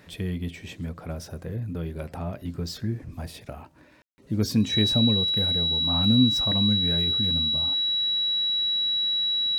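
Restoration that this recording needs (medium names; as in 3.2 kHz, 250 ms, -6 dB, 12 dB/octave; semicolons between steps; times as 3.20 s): band-stop 3.9 kHz, Q 30; room tone fill 4.02–4.18 s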